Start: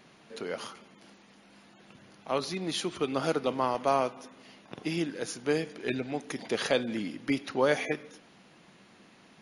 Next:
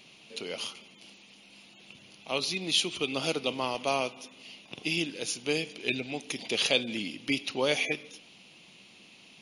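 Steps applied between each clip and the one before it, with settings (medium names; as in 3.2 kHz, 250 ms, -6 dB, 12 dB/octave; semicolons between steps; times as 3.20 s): resonant high shelf 2.1 kHz +7.5 dB, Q 3; trim -2.5 dB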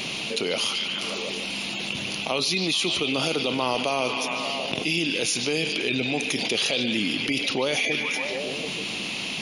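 peak limiter -21.5 dBFS, peak gain reduction 10.5 dB; repeats whose band climbs or falls 147 ms, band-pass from 3.5 kHz, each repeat -0.7 oct, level -6 dB; level flattener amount 70%; trim +5 dB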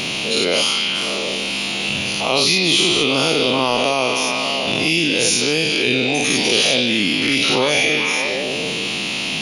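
every event in the spectrogram widened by 120 ms; trim +3 dB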